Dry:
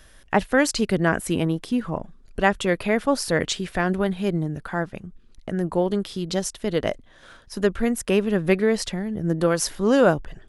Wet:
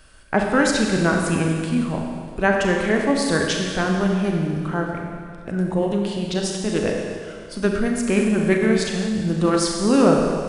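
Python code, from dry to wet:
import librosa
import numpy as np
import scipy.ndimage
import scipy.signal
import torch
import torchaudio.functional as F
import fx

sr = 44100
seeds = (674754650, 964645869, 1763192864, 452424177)

y = fx.rev_schroeder(x, sr, rt60_s=2.1, comb_ms=29, drr_db=0.5)
y = fx.formant_shift(y, sr, semitones=-2)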